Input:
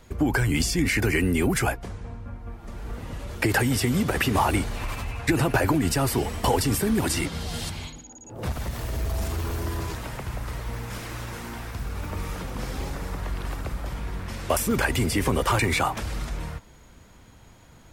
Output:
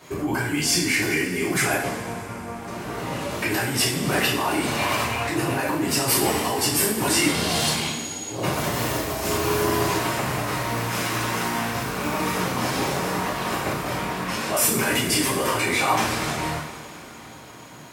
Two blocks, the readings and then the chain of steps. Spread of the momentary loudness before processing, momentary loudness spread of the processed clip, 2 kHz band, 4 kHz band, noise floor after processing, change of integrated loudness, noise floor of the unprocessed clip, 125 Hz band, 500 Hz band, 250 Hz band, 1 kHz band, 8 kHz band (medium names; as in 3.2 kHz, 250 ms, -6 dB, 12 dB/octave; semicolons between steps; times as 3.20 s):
14 LU, 11 LU, +4.5 dB, +8.0 dB, -41 dBFS, +3.5 dB, -51 dBFS, -2.5 dB, +3.5 dB, +1.0 dB, +5.0 dB, +7.5 dB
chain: compressor with a negative ratio -28 dBFS, ratio -1; high-pass 200 Hz 12 dB/octave; two-slope reverb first 0.54 s, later 3.7 s, from -17 dB, DRR -9 dB